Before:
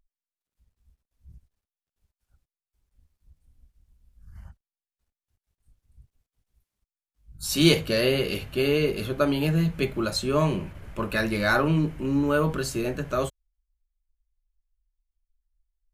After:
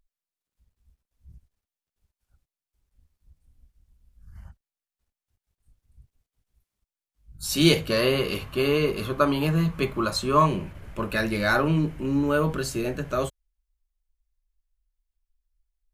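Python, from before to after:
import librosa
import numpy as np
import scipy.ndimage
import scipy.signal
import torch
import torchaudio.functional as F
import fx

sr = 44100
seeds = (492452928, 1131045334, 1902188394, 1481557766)

y = fx.peak_eq(x, sr, hz=1100.0, db=12.5, octaves=0.38, at=(7.9, 10.46))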